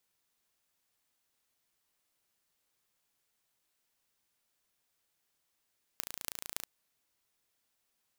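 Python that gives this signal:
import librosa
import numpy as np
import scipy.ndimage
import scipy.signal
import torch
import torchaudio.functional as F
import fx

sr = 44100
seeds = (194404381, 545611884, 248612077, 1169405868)

y = fx.impulse_train(sr, length_s=0.64, per_s=28.3, accent_every=8, level_db=-7.0)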